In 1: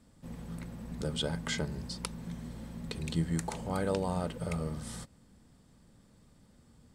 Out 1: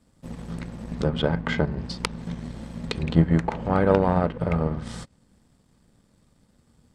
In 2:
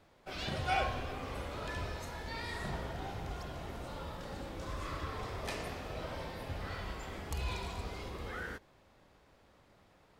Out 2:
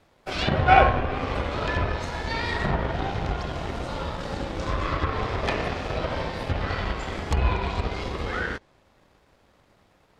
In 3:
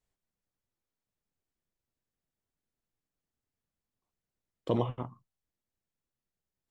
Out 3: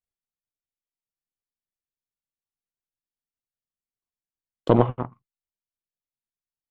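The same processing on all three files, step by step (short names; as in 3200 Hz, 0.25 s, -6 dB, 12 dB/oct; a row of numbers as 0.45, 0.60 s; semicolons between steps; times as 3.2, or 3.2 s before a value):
power-law curve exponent 1.4; treble ducked by the level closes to 2000 Hz, closed at -38.5 dBFS; normalise peaks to -1.5 dBFS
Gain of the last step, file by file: +16.5, +20.0, +14.0 dB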